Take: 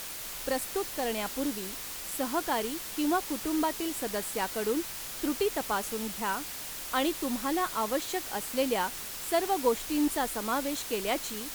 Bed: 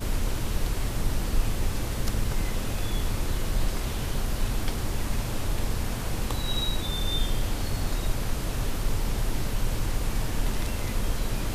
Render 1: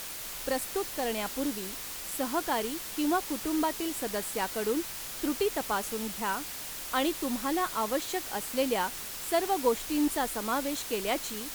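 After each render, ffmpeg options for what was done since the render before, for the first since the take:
-af anull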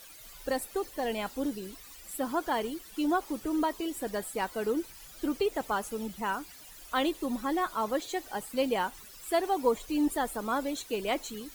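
-af "afftdn=nr=15:nf=-40"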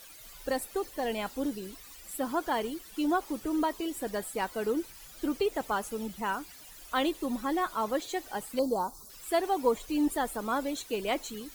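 -filter_complex "[0:a]asettb=1/sr,asplit=3[a][b][c];[a]atrim=end=4.424[d];[b]atrim=start=4.42:end=5.35,asetpts=PTS-STARTPTS,afade=t=in:d=0.004:c=qsin,afade=t=out:st=0.926:d=0.004:c=qsin,aeval=exprs='val(0)*gte(abs(val(0)),0.00168)':c=same[e];[c]atrim=start=5.346[f];[d][e]acrossfade=d=0.004:c1=hsin:c2=qsin[g];[g][f]acrossfade=d=0.004:c1=qsin:c2=hsin,asettb=1/sr,asplit=3[h][i][j];[h]atrim=end=8.594[k];[i]atrim=start=8.59:end=9.1,asetpts=PTS-STARTPTS,afade=t=in:d=0.004:c=qsin,afade=t=out:st=0.506:d=0.004:c=qsin,asuperstop=centerf=2300:order=8:qfactor=0.76[l];[j]atrim=start=9.096[m];[k][l]acrossfade=d=0.004:c1=hsin:c2=qsin[n];[n][m]acrossfade=d=0.004:c1=qsin:c2=hsin"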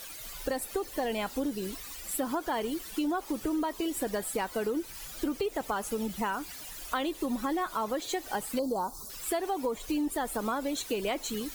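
-filter_complex "[0:a]asplit=2[a][b];[b]alimiter=limit=-23.5dB:level=0:latency=1:release=32,volume=1.5dB[c];[a][c]amix=inputs=2:normalize=0,acompressor=threshold=-28dB:ratio=6"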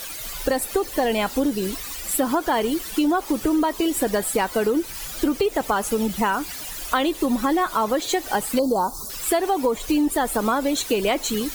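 -af "volume=10dB"

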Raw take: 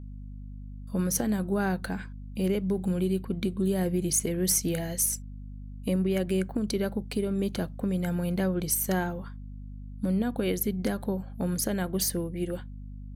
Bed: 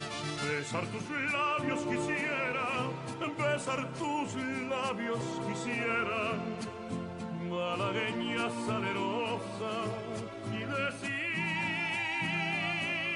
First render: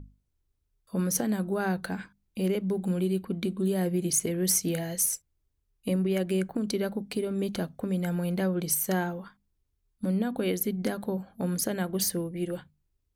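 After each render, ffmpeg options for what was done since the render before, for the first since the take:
-af "bandreject=f=50:t=h:w=6,bandreject=f=100:t=h:w=6,bandreject=f=150:t=h:w=6,bandreject=f=200:t=h:w=6,bandreject=f=250:t=h:w=6"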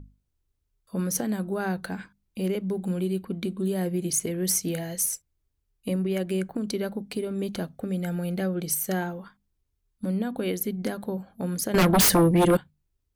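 -filter_complex "[0:a]asettb=1/sr,asplit=3[a][b][c];[a]atrim=end=7.794[d];[b]atrim=start=7.79:end=9.02,asetpts=PTS-STARTPTS,afade=t=in:d=0.004:c=qsin,afade=t=out:st=1.226:d=0.004:c=qsin,asuperstop=centerf=1000:order=4:qfactor=5[e];[c]atrim=start=9.016[f];[d][e]acrossfade=d=0.004:c1=hsin:c2=qsin[g];[g][f]acrossfade=d=0.004:c1=qsin:c2=hsin,asettb=1/sr,asplit=3[h][i][j];[h]atrim=end=11.744[k];[i]atrim=start=11.74:end=12.57,asetpts=PTS-STARTPTS,afade=t=in:d=0.004:c=qsin,afade=t=out:st=0.826:d=0.004:c=qsin,aeval=exprs='0.178*sin(PI/2*5.01*val(0)/0.178)':c=same[l];[j]atrim=start=12.566[m];[k][l]acrossfade=d=0.004:c1=hsin:c2=qsin[n];[n][m]acrossfade=d=0.004:c1=qsin:c2=hsin"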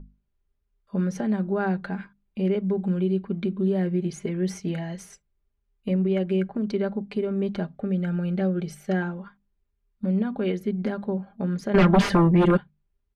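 -af "lowpass=2.6k,aecho=1:1:5:0.59"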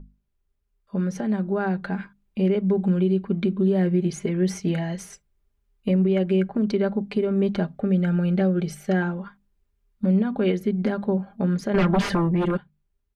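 -af "alimiter=limit=-17.5dB:level=0:latency=1:release=202,dynaudnorm=f=700:g=5:m=4.5dB"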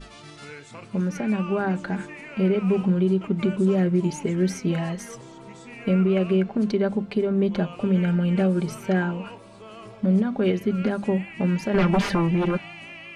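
-filter_complex "[1:a]volume=-7.5dB[a];[0:a][a]amix=inputs=2:normalize=0"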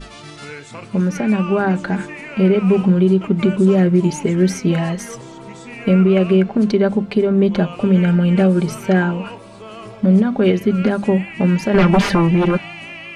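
-af "volume=7.5dB"

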